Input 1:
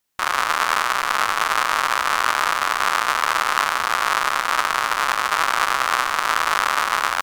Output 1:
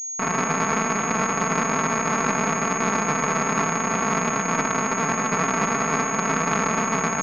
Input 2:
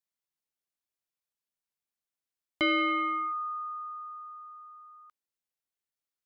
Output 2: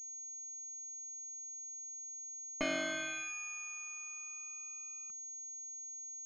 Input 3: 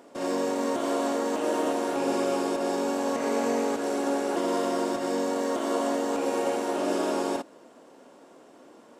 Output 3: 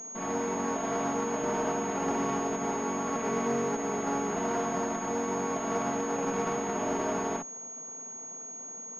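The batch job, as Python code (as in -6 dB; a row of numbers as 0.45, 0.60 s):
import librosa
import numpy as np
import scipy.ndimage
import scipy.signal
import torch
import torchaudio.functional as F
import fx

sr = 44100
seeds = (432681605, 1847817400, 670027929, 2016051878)

y = fx.lower_of_two(x, sr, delay_ms=4.5)
y = fx.low_shelf_res(y, sr, hz=100.0, db=-11.5, q=1.5)
y = fx.pwm(y, sr, carrier_hz=6600.0)
y = y * librosa.db_to_amplitude(-2.0)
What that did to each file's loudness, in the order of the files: -2.5, -11.0, -3.5 LU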